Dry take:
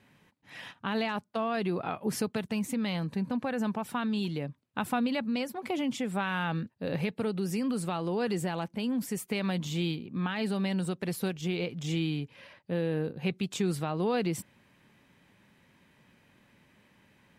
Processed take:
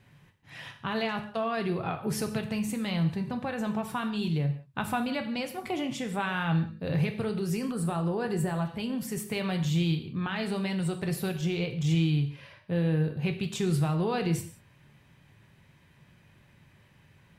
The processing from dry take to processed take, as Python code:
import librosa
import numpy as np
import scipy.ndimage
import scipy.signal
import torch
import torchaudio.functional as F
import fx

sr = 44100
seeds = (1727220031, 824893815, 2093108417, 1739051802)

y = fx.low_shelf_res(x, sr, hz=170.0, db=8.0, q=1.5)
y = fx.rev_gated(y, sr, seeds[0], gate_ms=210, shape='falling', drr_db=5.0)
y = fx.spec_box(y, sr, start_s=7.71, length_s=0.94, low_hz=1900.0, high_hz=7400.0, gain_db=-6)